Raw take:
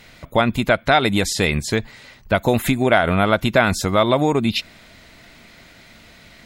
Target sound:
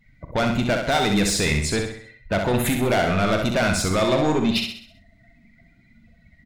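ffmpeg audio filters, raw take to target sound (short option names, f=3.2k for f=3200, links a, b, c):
-filter_complex "[0:a]afftdn=nr=28:nf=-38,adynamicequalizer=threshold=0.00501:dfrequency=9100:dqfactor=2.3:tfrequency=9100:tqfactor=2.3:attack=5:release=100:ratio=0.375:range=2.5:mode=boostabove:tftype=bell,asoftclip=type=tanh:threshold=-17dB,asplit=2[a][b];[b]adelay=40,volume=-11.5dB[c];[a][c]amix=inputs=2:normalize=0,asplit=2[d][e];[e]aecho=0:1:65|130|195|260|325|390:0.562|0.259|0.119|0.0547|0.0252|0.0116[f];[d][f]amix=inputs=2:normalize=0"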